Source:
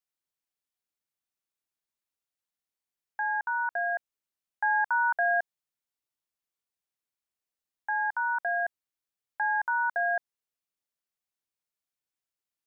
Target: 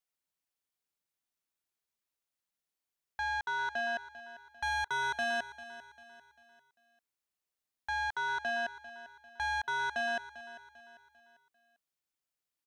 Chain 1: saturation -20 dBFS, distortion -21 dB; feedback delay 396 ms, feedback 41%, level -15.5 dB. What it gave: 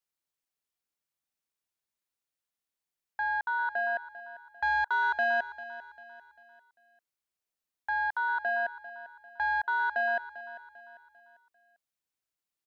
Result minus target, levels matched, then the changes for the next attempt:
saturation: distortion -11 dB
change: saturation -30 dBFS, distortion -10 dB

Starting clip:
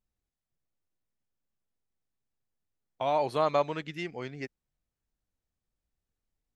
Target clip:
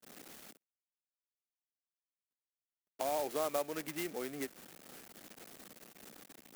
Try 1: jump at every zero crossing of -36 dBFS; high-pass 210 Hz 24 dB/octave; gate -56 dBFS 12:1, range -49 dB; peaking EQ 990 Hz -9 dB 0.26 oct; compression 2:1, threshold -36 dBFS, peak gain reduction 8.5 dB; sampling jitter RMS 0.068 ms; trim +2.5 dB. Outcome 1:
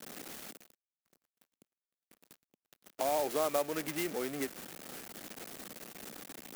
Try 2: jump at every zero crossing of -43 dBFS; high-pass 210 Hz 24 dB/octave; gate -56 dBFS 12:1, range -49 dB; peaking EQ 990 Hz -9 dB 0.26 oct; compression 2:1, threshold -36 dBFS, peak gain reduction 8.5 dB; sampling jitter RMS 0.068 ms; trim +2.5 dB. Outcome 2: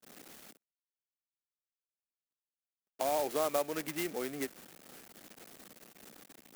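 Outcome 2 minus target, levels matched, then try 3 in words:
compression: peak gain reduction -3 dB
jump at every zero crossing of -43 dBFS; high-pass 210 Hz 24 dB/octave; gate -56 dBFS 12:1, range -49 dB; peaking EQ 990 Hz -9 dB 0.26 oct; compression 2:1, threshold -42.5 dBFS, peak gain reduction 11.5 dB; sampling jitter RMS 0.068 ms; trim +2.5 dB

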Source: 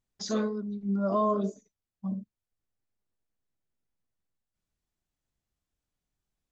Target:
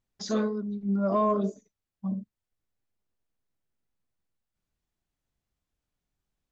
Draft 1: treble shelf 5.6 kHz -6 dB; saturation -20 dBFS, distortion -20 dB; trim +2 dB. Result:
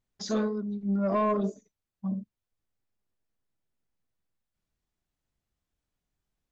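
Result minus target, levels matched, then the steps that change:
saturation: distortion +13 dB
change: saturation -12.5 dBFS, distortion -33 dB

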